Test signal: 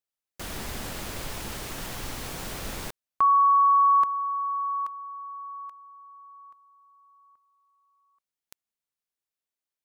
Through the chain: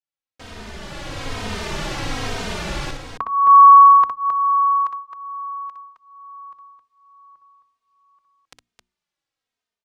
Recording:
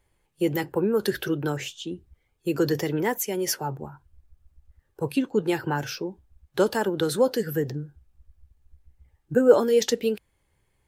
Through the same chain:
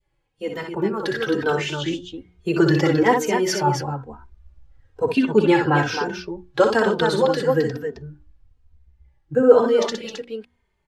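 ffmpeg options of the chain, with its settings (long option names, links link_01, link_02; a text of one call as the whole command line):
ffmpeg -i in.wav -filter_complex "[0:a]lowpass=5200,bandreject=frequency=60:width_type=h:width=6,bandreject=frequency=120:width_type=h:width=6,bandreject=frequency=180:width_type=h:width=6,bandreject=frequency=240:width_type=h:width=6,bandreject=frequency=300:width_type=h:width=6,bandreject=frequency=360:width_type=h:width=6,adynamicequalizer=threshold=0.0224:dfrequency=1100:dqfactor=0.84:tfrequency=1100:tqfactor=0.84:attack=5:release=100:ratio=0.375:range=2.5:mode=boostabove:tftype=bell,dynaudnorm=framelen=800:gausssize=3:maxgain=12.5dB,aecho=1:1:61.22|265.3:0.501|0.447,asplit=2[link_01][link_02];[link_02]adelay=3,afreqshift=-1.1[link_03];[link_01][link_03]amix=inputs=2:normalize=1" out.wav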